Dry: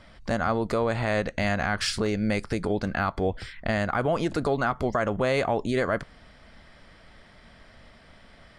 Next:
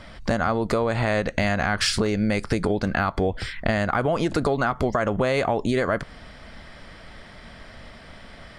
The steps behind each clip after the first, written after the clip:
downward compressor, threshold −27 dBFS, peak gain reduction 7 dB
level +8.5 dB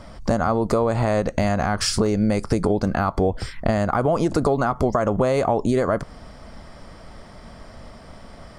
flat-topped bell 2,500 Hz −9 dB
level +3 dB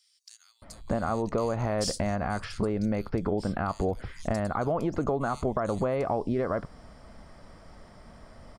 multiband delay without the direct sound highs, lows 620 ms, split 3,400 Hz
level −8 dB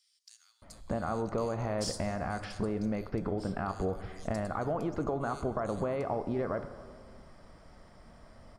dense smooth reverb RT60 2.1 s, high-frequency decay 0.5×, DRR 10 dB
level −5 dB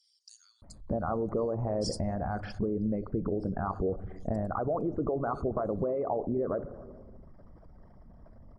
spectral envelope exaggerated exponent 2
level +2.5 dB
MP3 64 kbit/s 48,000 Hz

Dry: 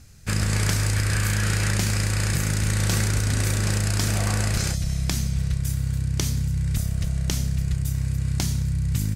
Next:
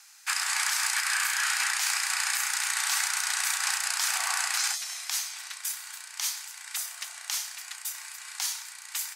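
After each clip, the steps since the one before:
Butterworth high-pass 780 Hz 72 dB per octave
brickwall limiter −19 dBFS, peak gain reduction 10 dB
level +4 dB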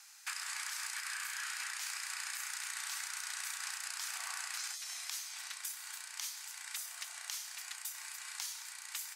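dynamic equaliser 780 Hz, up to −5 dB, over −52 dBFS, Q 3
downward compressor 4 to 1, threshold −36 dBFS, peak gain reduction 10.5 dB
level −3.5 dB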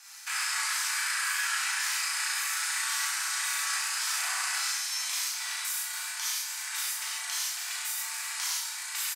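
double-tracking delay 37 ms −5.5 dB
reverb whose tail is shaped and stops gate 160 ms flat, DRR −7 dB
level +2 dB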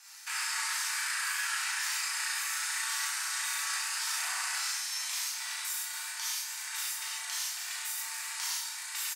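tuned comb filter 920 Hz, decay 0.16 s, harmonics all, mix 70%
level +6.5 dB

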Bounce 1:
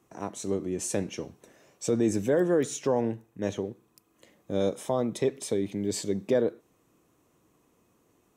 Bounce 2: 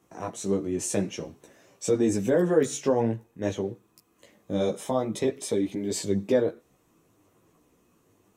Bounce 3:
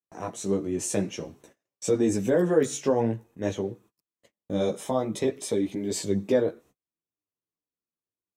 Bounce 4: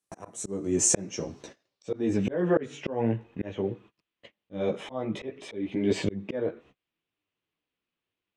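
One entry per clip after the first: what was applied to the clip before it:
multi-voice chorus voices 4, 0.5 Hz, delay 15 ms, depth 4.8 ms; level +5 dB
noise gate −52 dBFS, range −37 dB
low-pass filter sweep 9,900 Hz → 2,900 Hz, 0:00.21–0:02.41; dynamic equaliser 3,900 Hz, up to −8 dB, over −51 dBFS, Q 1.2; volume swells 536 ms; level +8.5 dB

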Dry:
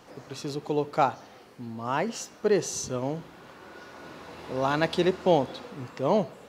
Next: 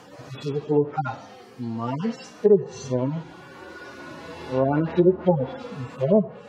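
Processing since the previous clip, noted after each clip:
harmonic-percussive split with one part muted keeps harmonic
treble cut that deepens with the level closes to 680 Hz, closed at −22.5 dBFS
level +8 dB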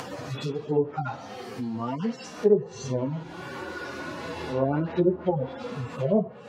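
upward compression, threshold −22 dBFS
flanger 1.4 Hz, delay 7.3 ms, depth 7.7 ms, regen −40%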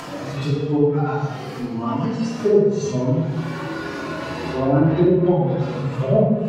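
rectangular room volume 630 cubic metres, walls mixed, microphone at 2.9 metres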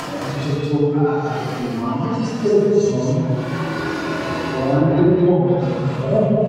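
reversed playback
upward compression, threshold −18 dBFS
reversed playback
single-tap delay 216 ms −3 dB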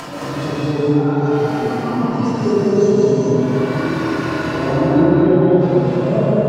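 dense smooth reverb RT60 2.9 s, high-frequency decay 0.45×, pre-delay 120 ms, DRR −3.5 dB
level −3 dB

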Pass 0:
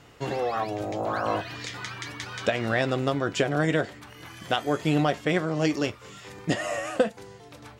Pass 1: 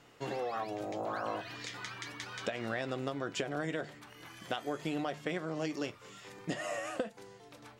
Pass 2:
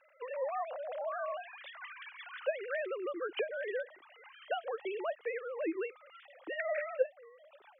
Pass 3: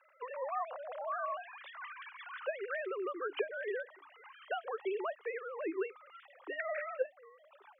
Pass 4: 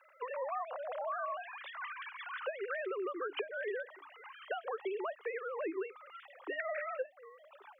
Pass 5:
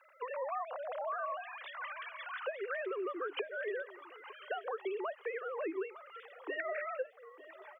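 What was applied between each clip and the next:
parametric band 61 Hz −13.5 dB 1.2 octaves; mains-hum notches 50/100/150 Hz; downward compressor, threshold −25 dBFS, peak gain reduction 8.5 dB; level −6.5 dB
three sine waves on the formant tracks
Chebyshev high-pass with heavy ripple 280 Hz, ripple 9 dB; level +4.5 dB
downward compressor 6 to 1, threshold −38 dBFS, peak gain reduction 10.5 dB; level +3.5 dB
repeating echo 903 ms, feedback 29%, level −18 dB

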